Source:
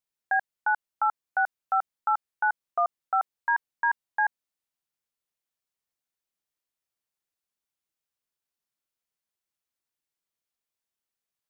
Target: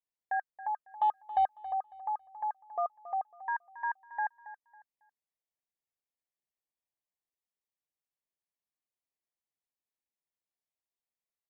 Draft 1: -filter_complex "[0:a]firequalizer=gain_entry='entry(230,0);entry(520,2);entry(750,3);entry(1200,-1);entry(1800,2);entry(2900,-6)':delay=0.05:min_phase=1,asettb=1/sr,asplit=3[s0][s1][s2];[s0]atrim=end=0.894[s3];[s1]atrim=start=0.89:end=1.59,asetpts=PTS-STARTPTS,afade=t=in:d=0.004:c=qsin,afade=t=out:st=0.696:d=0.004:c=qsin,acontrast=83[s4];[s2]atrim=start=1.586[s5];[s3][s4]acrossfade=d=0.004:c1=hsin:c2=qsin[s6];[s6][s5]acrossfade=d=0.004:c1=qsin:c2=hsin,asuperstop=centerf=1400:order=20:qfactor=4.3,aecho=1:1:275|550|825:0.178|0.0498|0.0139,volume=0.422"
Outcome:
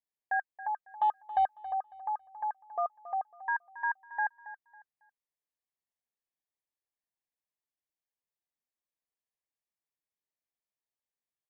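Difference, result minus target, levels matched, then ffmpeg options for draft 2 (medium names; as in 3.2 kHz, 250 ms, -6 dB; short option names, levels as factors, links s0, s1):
2 kHz band +4.5 dB
-filter_complex "[0:a]firequalizer=gain_entry='entry(230,0);entry(520,2);entry(750,3);entry(1200,-1);entry(1800,2);entry(2900,-6)':delay=0.05:min_phase=1,asettb=1/sr,asplit=3[s0][s1][s2];[s0]atrim=end=0.894[s3];[s1]atrim=start=0.89:end=1.59,asetpts=PTS-STARTPTS,afade=t=in:d=0.004:c=qsin,afade=t=out:st=0.696:d=0.004:c=qsin,acontrast=83[s4];[s2]atrim=start=1.586[s5];[s3][s4]acrossfade=d=0.004:c1=hsin:c2=qsin[s6];[s6][s5]acrossfade=d=0.004:c1=qsin:c2=hsin,asuperstop=centerf=1400:order=20:qfactor=4.3,equalizer=f=1500:t=o:w=0.26:g=-10,aecho=1:1:275|550|825:0.178|0.0498|0.0139,volume=0.422"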